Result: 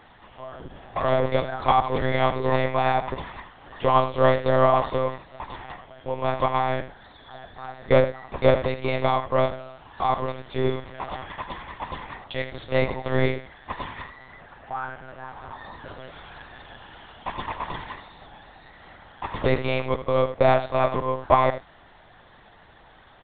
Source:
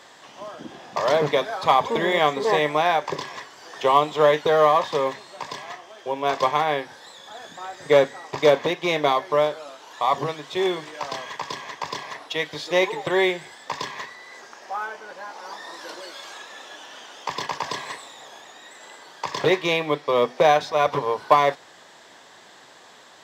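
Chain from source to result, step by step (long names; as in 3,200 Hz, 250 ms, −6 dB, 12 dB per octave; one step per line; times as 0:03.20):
high-shelf EQ 2,900 Hz −8.5 dB
on a send: single-tap delay 79 ms −11.5 dB
on the sum: one-pitch LPC vocoder at 8 kHz 130 Hz
level −1 dB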